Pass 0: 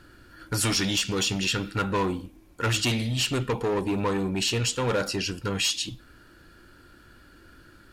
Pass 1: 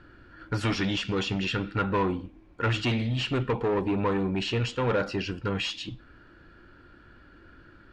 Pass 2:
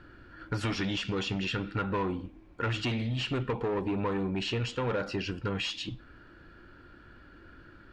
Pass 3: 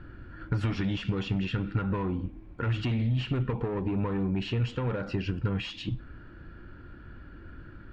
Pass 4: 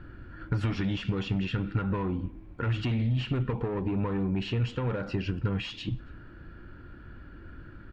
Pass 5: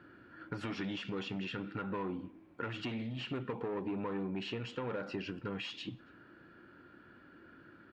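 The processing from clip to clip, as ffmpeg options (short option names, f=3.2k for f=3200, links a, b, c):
-af "lowpass=2.7k"
-af "acompressor=threshold=-30dB:ratio=2.5"
-af "acompressor=threshold=-32dB:ratio=6,bass=f=250:g=9,treble=f=4k:g=-10,volume=1dB"
-filter_complex "[0:a]asplit=2[a][b];[b]adelay=279.9,volume=-28dB,highshelf=f=4k:g=-6.3[c];[a][c]amix=inputs=2:normalize=0"
-af "highpass=240,volume=-4.5dB"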